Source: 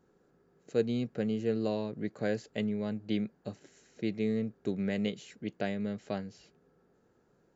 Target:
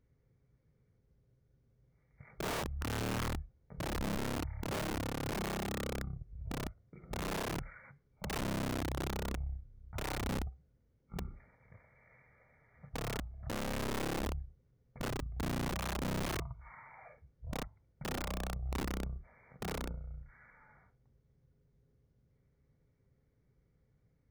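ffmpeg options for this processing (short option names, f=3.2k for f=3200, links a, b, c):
-af "asetrate=13715,aresample=44100,aeval=exprs='(mod(26.6*val(0)+1,2)-1)/26.6':c=same,volume=-3dB"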